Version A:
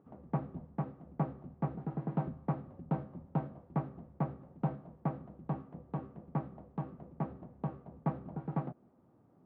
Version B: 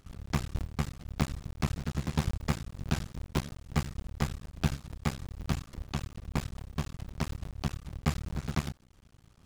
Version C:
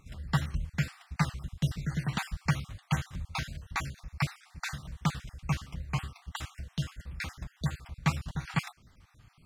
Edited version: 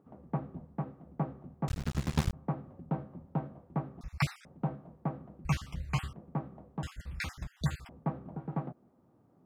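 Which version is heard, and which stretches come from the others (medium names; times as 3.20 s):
A
1.68–2.33 s: from B
4.01–4.45 s: from C
5.45–6.13 s: from C
6.83–7.89 s: from C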